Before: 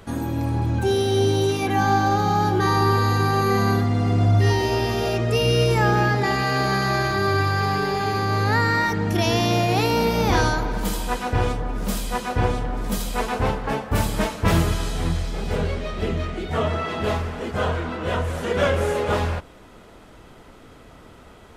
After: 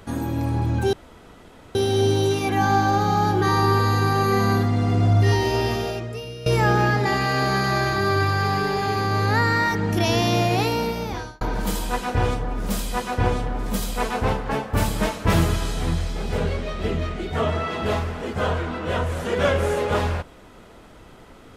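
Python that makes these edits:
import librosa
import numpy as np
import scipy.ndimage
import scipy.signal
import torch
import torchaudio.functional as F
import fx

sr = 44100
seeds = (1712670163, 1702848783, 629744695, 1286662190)

y = fx.edit(x, sr, fx.insert_room_tone(at_s=0.93, length_s=0.82),
    fx.fade_out_to(start_s=4.89, length_s=0.75, curve='qua', floor_db=-18.0),
    fx.fade_out_span(start_s=9.68, length_s=0.91), tone=tone)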